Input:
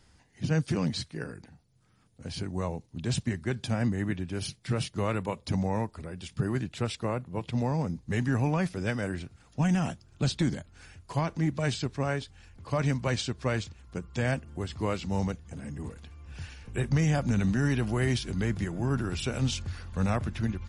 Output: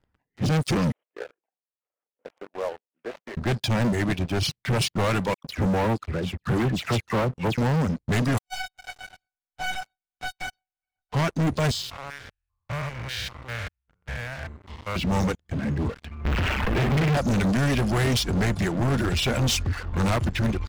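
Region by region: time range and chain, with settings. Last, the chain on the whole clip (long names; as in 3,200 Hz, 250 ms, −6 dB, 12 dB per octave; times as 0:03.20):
0:00.92–0:03.37: variable-slope delta modulation 16 kbit/s + four-pole ladder high-pass 440 Hz, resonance 45% + parametric band 1,400 Hz −5 dB 2.4 octaves
0:05.34–0:07.58: high-shelf EQ 3,700 Hz −6 dB + all-pass dispersion lows, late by 104 ms, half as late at 2,100 Hz
0:08.37–0:11.12: compressing power law on the bin magnitudes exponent 0.22 + tuned comb filter 750 Hz, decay 0.19 s, mix 100% + gate with flip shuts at −28 dBFS, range −37 dB
0:11.71–0:14.96: spectrum averaged block by block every 200 ms + guitar amp tone stack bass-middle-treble 10-0-10 + multiband upward and downward expander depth 40%
0:16.25–0:17.17: linear delta modulator 16 kbit/s, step −28.5 dBFS + flutter between parallel walls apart 9.3 metres, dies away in 0.54 s
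whole clip: reverb reduction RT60 0.77 s; low-pass that shuts in the quiet parts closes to 1,800 Hz, open at −24.5 dBFS; leveller curve on the samples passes 5; level −3 dB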